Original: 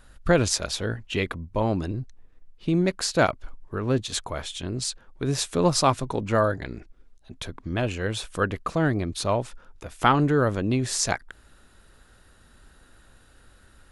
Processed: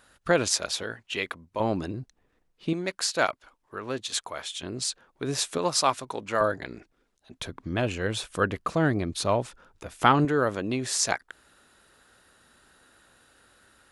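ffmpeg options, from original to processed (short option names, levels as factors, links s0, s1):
-af "asetnsamples=n=441:p=0,asendcmd='0.83 highpass f 770;1.6 highpass f 210;2.73 highpass f 850;4.62 highpass f 310;5.58 highpass f 770;6.41 highpass f 310;7.4 highpass f 100;10.25 highpass f 350',highpass=f=390:p=1"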